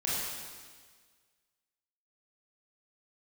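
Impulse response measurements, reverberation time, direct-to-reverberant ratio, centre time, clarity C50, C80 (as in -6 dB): 1.6 s, -8.0 dB, 0.119 s, -2.5 dB, -0.5 dB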